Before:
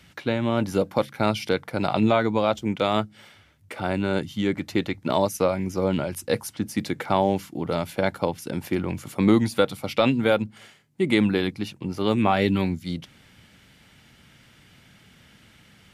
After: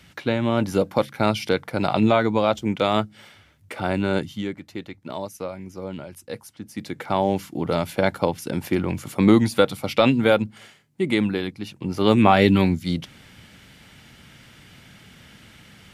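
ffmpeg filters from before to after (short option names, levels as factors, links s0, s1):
-af "volume=15.8,afade=t=out:st=4.17:d=0.4:silence=0.266073,afade=t=in:st=6.64:d=0.96:silence=0.237137,afade=t=out:st=10.33:d=1.26:silence=0.446684,afade=t=in:st=11.59:d=0.51:silence=0.334965"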